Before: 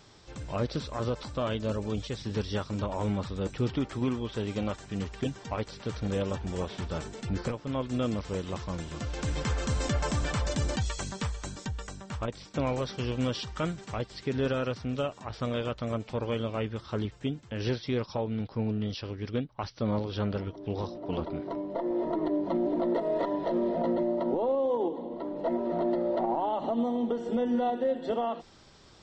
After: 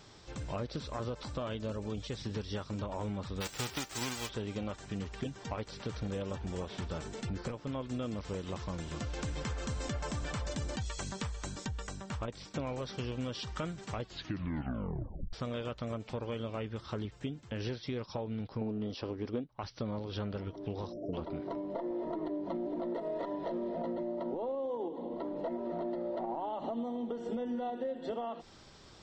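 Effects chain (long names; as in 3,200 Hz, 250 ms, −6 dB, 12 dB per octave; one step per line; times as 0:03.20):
0:03.40–0:04.28: spectral envelope flattened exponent 0.3
0:14.01: tape stop 1.32 s
0:18.61–0:19.44: flat-topped bell 510 Hz +8.5 dB 2.7 octaves
0:20.93–0:21.14: time-frequency box erased 700–5,100 Hz
downward compressor 4 to 1, threshold −35 dBFS, peak gain reduction 14 dB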